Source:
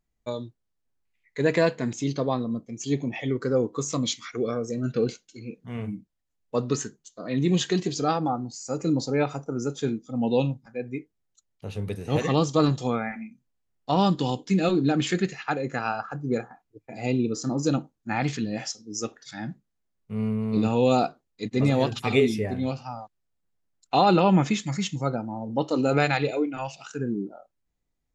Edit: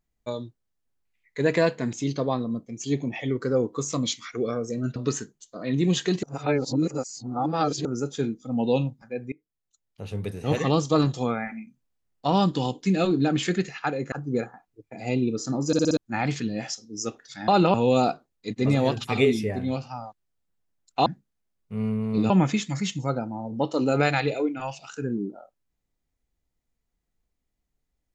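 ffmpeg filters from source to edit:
-filter_complex "[0:a]asplit=15[a][b][c][d][e][f][g][h][i][j][k][l][m][n][o];[a]atrim=end=4.962[p];[b]atrim=start=6.598:end=7.872[q];[c]atrim=start=7.868:end=9.492,asetpts=PTS-STARTPTS,areverse[r];[d]atrim=start=9.488:end=10.96,asetpts=PTS-STARTPTS,afade=t=out:st=1.468:d=0.004:c=hsin:silence=0.0749894[s];[e]atrim=start=10.96:end=15.762,asetpts=PTS-STARTPTS,afade=t=in:d=0.85:silence=0.0749894[t];[f]atrim=start=16.088:end=17.702[u];[g]atrim=start=17.638:end=17.702[v];[h]atrim=start=17.638:end=17.702[w];[i]atrim=start=17.638:end=17.702[x];[j]atrim=start=17.638:end=17.702[y];[k]atrim=start=17.938:end=19.452[z];[l]atrim=start=24.008:end=24.272[aa];[m]atrim=start=20.688:end=24.012[ab];[n]atrim=start=19.448:end=20.692[ac];[o]atrim=start=24.268[ad];[p][q]acrossfade=d=0.004:c1=hsin:c2=hsin[ae];[ae][r]acrossfade=d=0.004:c1=hsin:c2=hsin[af];[s][t]concat=n=2:v=0:a=1[ag];[af][ag]acrossfade=d=0.004:c1=hsin:c2=hsin[ah];[ah][u]acrossfade=d=0.004:c1=hsin:c2=hsin[ai];[ai][v]acrossfade=d=0.004:c1=hsin:c2=hsin[aj];[aj][w]acrossfade=d=0.004:c1=hsin:c2=hsin[ak];[ak][x]acrossfade=d=0.004:c1=hsin:c2=hsin[al];[al][y]acrossfade=d=0.004:c1=hsin:c2=hsin[am];[am][z]acrossfade=d=0.004:c1=hsin:c2=hsin[an];[an][aa]acrossfade=d=0.004:c1=hsin:c2=hsin[ao];[ao][ab]acrossfade=d=0.004:c1=hsin:c2=hsin[ap];[ap][ac]acrossfade=d=0.004:c1=hsin:c2=hsin[aq];[aq][ad]acrossfade=d=0.004:c1=hsin:c2=hsin"

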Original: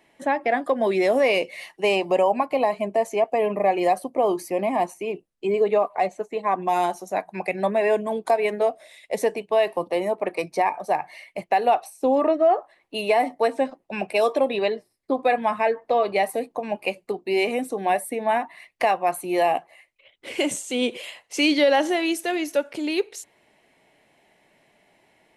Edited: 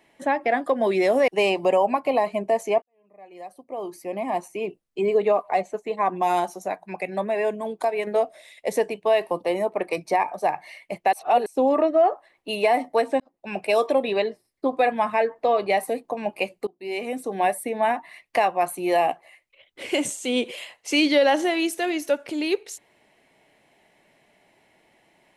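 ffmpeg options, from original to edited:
-filter_complex "[0:a]asplit=9[a][b][c][d][e][f][g][h][i];[a]atrim=end=1.282[j];[b]atrim=start=1.738:end=3.28,asetpts=PTS-STARTPTS,afade=t=out:st=1.538:d=0.004:c=hsin[k];[c]atrim=start=3.28:end=7.142,asetpts=PTS-STARTPTS,afade=t=in:d=1.83:c=qua[l];[d]atrim=start=7.138:end=8.532,asetpts=PTS-STARTPTS,volume=-3.5dB[m];[e]atrim=start=8.528:end=11.592[n];[f]atrim=start=11.588:end=11.922,asetpts=PTS-STARTPTS,areverse[o];[g]atrim=start=11.918:end=13.66,asetpts=PTS-STARTPTS,afade=t=out:st=1.738:d=0.004:c=hsin[p];[h]atrim=start=13.66:end=17.13,asetpts=PTS-STARTPTS,afade=t=in:d=0.44,afade=t=out:st=3.466:d=0.004:c=hsin:silence=0.0630957[q];[i]atrim=start=17.13,asetpts=PTS-STARTPTS,afade=t=in:d=0.72:silence=0.0630957[r];[k][l]concat=n=2:v=0:a=1[s];[j][s]acrossfade=d=0.004:c1=hsin:c2=hsin[t];[t][m]acrossfade=d=0.004:c1=hsin:c2=hsin[u];[u][n]acrossfade=d=0.004:c1=hsin:c2=hsin[v];[v][o]acrossfade=d=0.004:c1=hsin:c2=hsin[w];[p][q][r]concat=n=3:v=0:a=1[x];[w][x]acrossfade=d=0.004:c1=hsin:c2=hsin"

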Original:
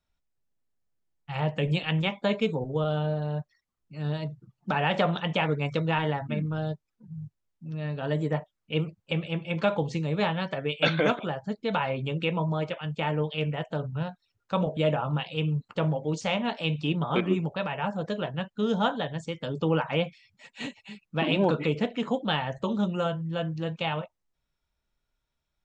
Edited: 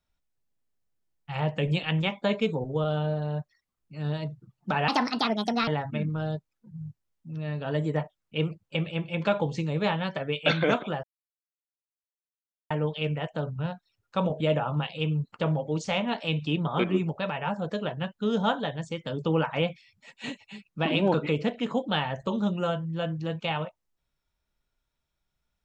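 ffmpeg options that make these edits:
-filter_complex "[0:a]asplit=5[a][b][c][d][e];[a]atrim=end=4.884[f];[b]atrim=start=4.88:end=6.04,asetpts=PTS-STARTPTS,asetrate=64386,aresample=44100,atrim=end_sample=35038,asetpts=PTS-STARTPTS[g];[c]atrim=start=6.036:end=11.4,asetpts=PTS-STARTPTS,afade=t=out:st=5.36:d=0.004:c=hsin[h];[d]atrim=start=11.4:end=13.07,asetpts=PTS-STARTPTS,volume=0[i];[e]atrim=start=13.07,asetpts=PTS-STARTPTS,afade=t=in:d=0.004:c=hsin[j];[f][g]acrossfade=d=0.004:c1=hsin:c2=hsin[k];[h][i][j]concat=n=3:v=0:a=1[l];[k][l]acrossfade=d=0.004:c1=hsin:c2=hsin"

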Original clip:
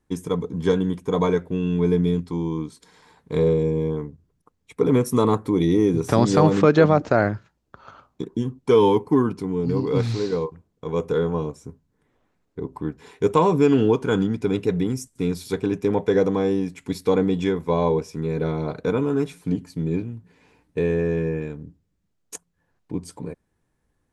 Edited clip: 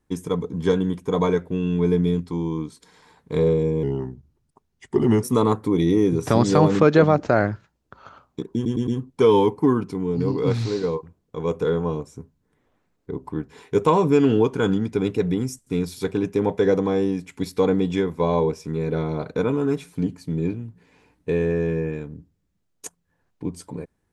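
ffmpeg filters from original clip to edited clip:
-filter_complex "[0:a]asplit=6[a][b][c][d][e][f];[a]atrim=end=3.834[g];[b]atrim=start=3.83:end=5.05,asetpts=PTS-STARTPTS,asetrate=38367,aresample=44100,atrim=end_sample=61841,asetpts=PTS-STARTPTS[h];[c]atrim=start=5.046:end=8.472[i];[d]atrim=start=8.358:end=8.472[j];[e]atrim=start=8.358:end=8.472[k];[f]atrim=start=8.358[l];[g][h]acrossfade=d=0.004:c1=hsin:c2=hsin[m];[m][i]acrossfade=d=0.004:c1=hsin:c2=hsin[n];[n][j]acrossfade=d=0.004:c1=hsin:c2=hsin[o];[o][k]acrossfade=d=0.004:c1=hsin:c2=hsin[p];[p][l]acrossfade=d=0.004:c1=hsin:c2=hsin"

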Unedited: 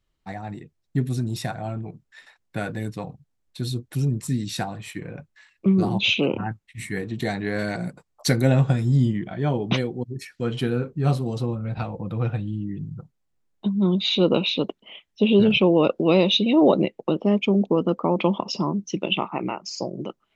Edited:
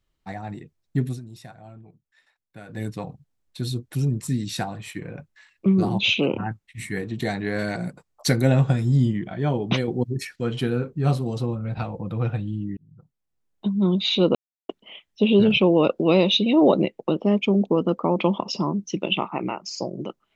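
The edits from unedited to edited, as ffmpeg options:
-filter_complex "[0:a]asplit=8[a][b][c][d][e][f][g][h];[a]atrim=end=1.2,asetpts=PTS-STARTPTS,afade=t=out:st=1.07:d=0.13:silence=0.199526[i];[b]atrim=start=1.2:end=2.68,asetpts=PTS-STARTPTS,volume=-14dB[j];[c]atrim=start=2.68:end=9.882,asetpts=PTS-STARTPTS,afade=t=in:d=0.13:silence=0.199526[k];[d]atrim=start=9.878:end=10.362,asetpts=PTS-STARTPTS,volume=5.5dB[l];[e]atrim=start=10.358:end=12.77,asetpts=PTS-STARTPTS,afade=t=out:st=2.408:d=0.004:c=hsin[m];[f]atrim=start=12.77:end=14.35,asetpts=PTS-STARTPTS,afade=t=in:d=0.95,afade=t=out:st=1.576:d=0.004:c=hsin[n];[g]atrim=start=14.35:end=14.69,asetpts=PTS-STARTPTS,volume=0[o];[h]atrim=start=14.69,asetpts=PTS-STARTPTS,afade=t=in:d=0.004:c=hsin[p];[i][j][k]concat=n=3:v=0:a=1[q];[q][l]acrossfade=d=0.004:c1=hsin:c2=hsin[r];[m][n][o][p]concat=n=4:v=0:a=1[s];[r][s]acrossfade=d=0.004:c1=hsin:c2=hsin"

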